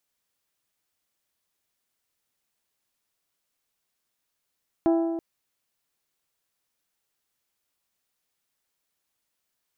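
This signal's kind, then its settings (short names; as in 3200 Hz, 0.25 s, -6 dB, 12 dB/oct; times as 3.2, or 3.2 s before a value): metal hit bell, length 0.33 s, lowest mode 332 Hz, modes 6, decay 1.66 s, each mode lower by 7 dB, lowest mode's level -17 dB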